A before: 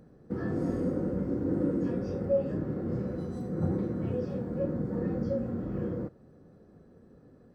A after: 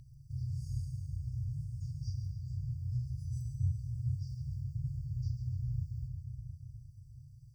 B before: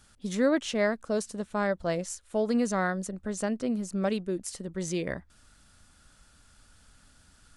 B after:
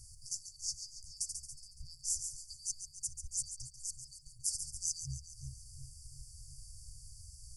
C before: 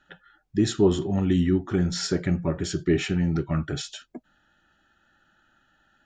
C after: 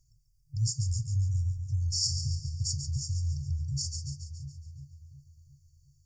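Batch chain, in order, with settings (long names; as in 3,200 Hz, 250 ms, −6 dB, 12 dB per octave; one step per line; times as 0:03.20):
echo with a time of its own for lows and highs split 310 Hz, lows 356 ms, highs 140 ms, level −8.5 dB
in parallel at +3 dB: downward compressor, threshold −39 dBFS
on the sum: brick-wall band-stop 150–4,500 Hz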